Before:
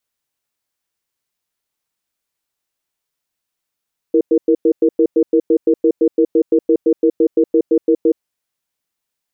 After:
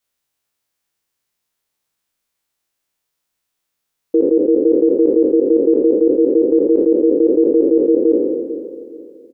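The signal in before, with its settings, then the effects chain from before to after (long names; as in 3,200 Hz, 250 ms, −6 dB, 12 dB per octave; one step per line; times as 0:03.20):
tone pair in a cadence 328 Hz, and 468 Hz, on 0.07 s, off 0.10 s, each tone −11.5 dBFS 4.07 s
peak hold with a decay on every bin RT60 1.73 s
repeating echo 425 ms, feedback 38%, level −15 dB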